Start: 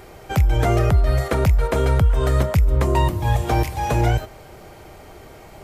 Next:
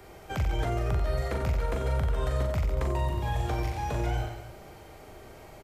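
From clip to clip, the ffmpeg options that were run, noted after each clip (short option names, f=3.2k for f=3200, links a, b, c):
-filter_complex "[0:a]aecho=1:1:40|90|152.5|230.6|328.3:0.631|0.398|0.251|0.158|0.1,acrossover=split=100|280|7100[a][b][c][d];[a]acompressor=threshold=-18dB:ratio=4[e];[b]acompressor=threshold=-31dB:ratio=4[f];[c]acompressor=threshold=-24dB:ratio=4[g];[d]acompressor=threshold=-51dB:ratio=4[h];[e][f][g][h]amix=inputs=4:normalize=0,volume=-8dB"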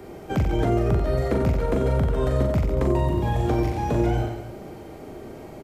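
-af "equalizer=f=260:t=o:w=2.2:g=14,volume=1dB"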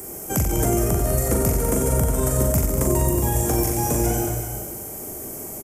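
-filter_complex "[0:a]aexciter=amount=14.3:drive=8.2:freq=6.2k,asplit=2[a][b];[b]aecho=0:1:199|370:0.355|0.299[c];[a][c]amix=inputs=2:normalize=0"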